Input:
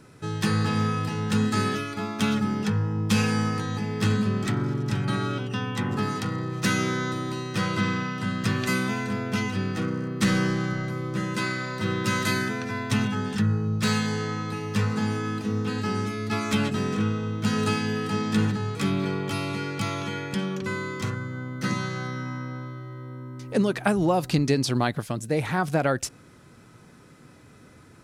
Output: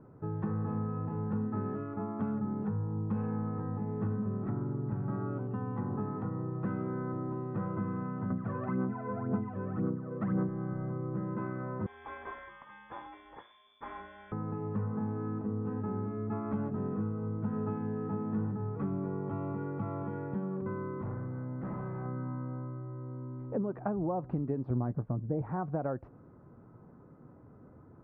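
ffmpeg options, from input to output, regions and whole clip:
ffmpeg -i in.wav -filter_complex "[0:a]asettb=1/sr,asplit=3[link_01][link_02][link_03];[link_01]atrim=end=8.304[link_04];[link_02]atrim=start=8.3:end=10.49,asetpts=PTS-STARTPTS,afade=type=in:duration=0.004:curve=qsin,afade=type=out:start_time=2.186:duration=0.004:curve=qsin,highpass=120,acrossover=split=4000[link_05][link_06];[link_06]acompressor=threshold=-41dB:ratio=4:attack=1:release=60[link_07];[link_05][link_07]amix=inputs=2:normalize=0,aphaser=in_gain=1:out_gain=1:delay=2:decay=0.67:speed=1.9:type=sinusoidal[link_08];[link_03]atrim=start=10.486[link_09];[link_04][link_08]acrossfade=duration=0.004:curve1=hsin:curve2=qsin[link_10];[link_10][link_09]acrossfade=duration=0.004:curve1=qsin:curve2=hsin,asettb=1/sr,asplit=3[link_11][link_12][link_13];[link_11]atrim=end=11.864[link_14];[link_12]atrim=start=11.86:end=14.32,asetpts=PTS-STARTPTS,afade=type=in:duration=0.004:curve=qsin,afade=type=out:start_time=2.456:duration=0.004:curve=qsin,volume=19dB,asoftclip=hard,volume=-19dB,lowpass=frequency=3100:width_type=q:width=0.5098,lowpass=frequency=3100:width_type=q:width=0.6013,lowpass=frequency=3100:width_type=q:width=0.9,lowpass=frequency=3100:width_type=q:width=2.563,afreqshift=-3600[link_15];[link_13]atrim=start=14.316[link_16];[link_14][link_15]acrossfade=duration=0.004:curve1=hsin:curve2=qsin[link_17];[link_17][link_16]acrossfade=duration=0.004:curve1=qsin:curve2=hsin,asettb=1/sr,asplit=3[link_18][link_19][link_20];[link_18]atrim=end=21.024[link_21];[link_19]atrim=start=21.02:end=22.06,asetpts=PTS-STARTPTS,afade=type=in:duration=0.004:curve=qsin,afade=type=out:start_time=1.036:duration=0.004:curve=qsin,equalizer=frequency=2100:width_type=o:width=0.26:gain=3.5,asoftclip=type=hard:threshold=-30.5dB[link_22];[link_20]atrim=start=22.056[link_23];[link_21][link_22]acrossfade=duration=0.004:curve1=hsin:curve2=qsin[link_24];[link_24][link_23]acrossfade=duration=0.004:curve1=qsin:curve2=hsin,asettb=1/sr,asplit=3[link_25][link_26][link_27];[link_25]atrim=end=24.704[link_28];[link_26]atrim=start=24.7:end=25.42,asetpts=PTS-STARTPTS,afade=type=in:duration=0.004:curve=qsin,afade=type=out:start_time=0.716:duration=0.004:curve=qsin,lowpass=frequency=1600:poles=1,lowshelf=frequency=240:gain=9,asplit=2[link_29][link_30];[link_30]adelay=16,volume=-11.5dB[link_31];[link_29][link_31]amix=inputs=2:normalize=0,atrim=end_sample=31752[link_32];[link_27]atrim=start=25.416[link_33];[link_28][link_32]acrossfade=duration=0.004:curve1=hsin:curve2=qsin[link_34];[link_34][link_33]acrossfade=duration=0.004:curve1=qsin:curve2=hsin,lowpass=frequency=1100:width=0.5412,lowpass=frequency=1100:width=1.3066,acompressor=threshold=-30dB:ratio=2.5,volume=-3dB" out.wav

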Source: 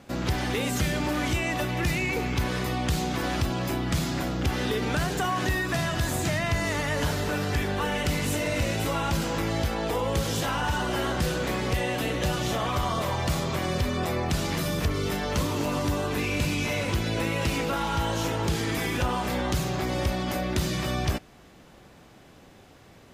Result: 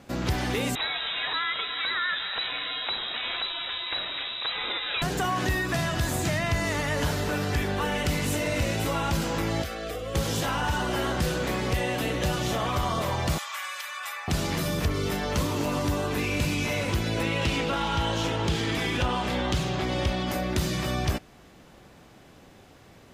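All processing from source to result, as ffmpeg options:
ffmpeg -i in.wav -filter_complex "[0:a]asettb=1/sr,asplit=3[link_01][link_02][link_03];[link_01]atrim=end=0.754[link_04];[link_02]atrim=start=0.75:end=5.02,asetpts=PTS-STARTPTS,afade=type=in:duration=0.004:curve=qsin,afade=type=out:start_time=4.266:duration=0.004:curve=qsin,tiltshelf=frequency=1500:gain=-6.5,lowpass=frequency=3400:width_type=q:width=0.5098,lowpass=frequency=3400:width_type=q:width=0.6013,lowpass=frequency=3400:width_type=q:width=0.9,lowpass=frequency=3400:width_type=q:width=2.563,afreqshift=-4000[link_05];[link_03]atrim=start=5.016[link_06];[link_04][link_05]acrossfade=duration=0.004:curve1=hsin:curve2=qsin[link_07];[link_07][link_06]acrossfade=duration=0.004:curve1=qsin:curve2=hsin,asettb=1/sr,asplit=3[link_08][link_09][link_10];[link_08]atrim=end=9.624[link_11];[link_09]atrim=start=9.62:end=10.15,asetpts=PTS-STARTPTS,afade=type=in:duration=0.004:curve=qsin,afade=type=out:start_time=0.526:duration=0.004:curve=qsin,acrossover=split=96|410[link_12][link_13][link_14];[link_12]acompressor=threshold=-40dB:ratio=4[link_15];[link_13]acompressor=threshold=-45dB:ratio=4[link_16];[link_14]acompressor=threshold=-32dB:ratio=4[link_17];[link_15][link_16][link_17]amix=inputs=3:normalize=0,asuperstop=centerf=910:order=20:qfactor=3.4[link_18];[link_10]atrim=start=10.146[link_19];[link_11][link_18]acrossfade=duration=0.004:curve1=hsin:curve2=qsin[link_20];[link_20][link_19]acrossfade=duration=0.004:curve1=qsin:curve2=hsin,asettb=1/sr,asplit=3[link_21][link_22][link_23];[link_21]atrim=end=13.384[link_24];[link_22]atrim=start=13.38:end=14.28,asetpts=PTS-STARTPTS,afade=type=in:duration=0.004:curve=qsin,afade=type=out:start_time=0.896:duration=0.004:curve=qsin,highpass=frequency=1100:width=0.5412,highpass=frequency=1100:width=1.3066,equalizer=frequency=4600:width=2:gain=-4,aecho=1:1:3.5:0.61,atrim=end_sample=39690[link_25];[link_23]atrim=start=14.276[link_26];[link_24][link_25]acrossfade=duration=0.004:curve1=hsin:curve2=qsin[link_27];[link_27][link_26]acrossfade=duration=0.004:curve1=qsin:curve2=hsin,asettb=1/sr,asplit=3[link_28][link_29][link_30];[link_28]atrim=end=17.234[link_31];[link_29]atrim=start=17.23:end=20.27,asetpts=PTS-STARTPTS,afade=type=in:duration=0.004:curve=qsin,afade=type=out:start_time=3.036:duration=0.004:curve=qsin,equalizer=frequency=3200:width_type=o:width=0.66:gain=5.5,adynamicsmooth=sensitivity=3:basefreq=7700[link_32];[link_30]atrim=start=20.266[link_33];[link_31][link_32]acrossfade=duration=0.004:curve1=hsin:curve2=qsin[link_34];[link_34][link_33]acrossfade=duration=0.004:curve1=qsin:curve2=hsin" out.wav

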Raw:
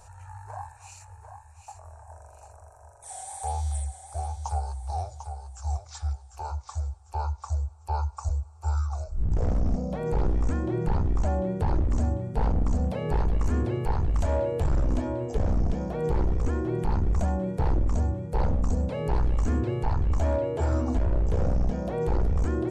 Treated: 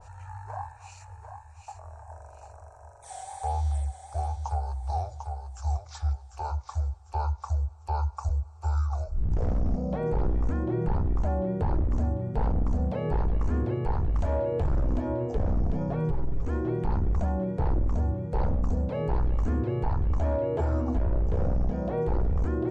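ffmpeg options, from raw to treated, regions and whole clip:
ffmpeg -i in.wav -filter_complex "[0:a]asettb=1/sr,asplit=3[link_01][link_02][link_03];[link_01]atrim=end=15.744[link_04];[link_02]atrim=start=15.74:end=16.44,asetpts=PTS-STARTPTS,afade=type=in:duration=0.004:curve=qsin,afade=type=out:start_time=0.696:duration=0.004:curve=qsin,lowshelf=frequency=140:gain=9,aecho=1:1:7.2:0.78,atrim=end_sample=30870[link_05];[link_03]atrim=start=16.436[link_06];[link_04][link_05]acrossfade=duration=0.004:curve1=hsin:curve2=qsin[link_07];[link_07][link_06]acrossfade=duration=0.004:curve1=qsin:curve2=hsin,alimiter=limit=-21.5dB:level=0:latency=1:release=173,lowpass=5900,adynamicequalizer=threshold=0.00224:dfrequency=2000:dqfactor=0.7:tfrequency=2000:tqfactor=0.7:attack=5:release=100:ratio=0.375:range=3.5:mode=cutabove:tftype=highshelf,volume=2dB" out.wav

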